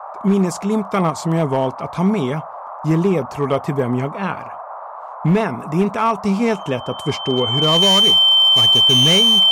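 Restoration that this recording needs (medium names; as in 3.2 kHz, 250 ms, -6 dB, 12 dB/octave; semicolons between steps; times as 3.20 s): clip repair -9 dBFS; band-stop 3.1 kHz, Q 30; noise print and reduce 30 dB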